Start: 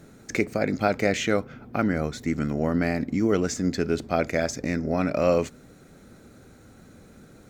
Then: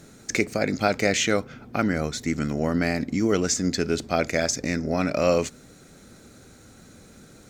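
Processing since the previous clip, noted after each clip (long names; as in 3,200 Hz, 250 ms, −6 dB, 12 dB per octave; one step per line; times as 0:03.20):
parametric band 6,300 Hz +8.5 dB 2.3 octaves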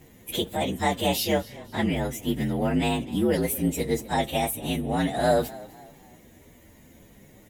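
partials spread apart or drawn together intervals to 119%
echo with shifted repeats 252 ms, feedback 39%, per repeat +49 Hz, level −20 dB
level +1 dB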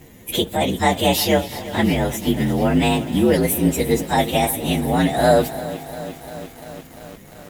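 feedback echo at a low word length 347 ms, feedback 80%, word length 7 bits, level −15 dB
level +7 dB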